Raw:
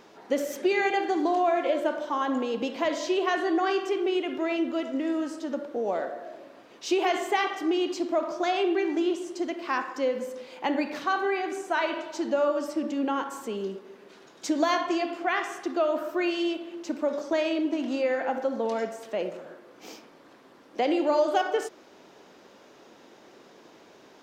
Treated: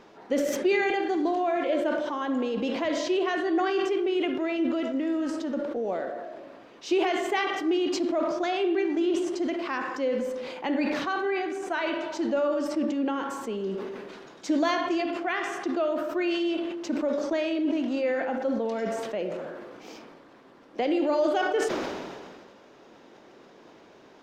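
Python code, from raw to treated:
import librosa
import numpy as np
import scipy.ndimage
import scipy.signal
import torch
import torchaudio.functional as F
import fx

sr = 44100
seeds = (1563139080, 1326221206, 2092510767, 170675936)

y = fx.dynamic_eq(x, sr, hz=940.0, q=1.2, threshold_db=-37.0, ratio=4.0, max_db=-5)
y = fx.lowpass(y, sr, hz=3700.0, slope=6)
y = fx.low_shelf(y, sr, hz=74.0, db=7.5)
y = fx.sustainer(y, sr, db_per_s=30.0)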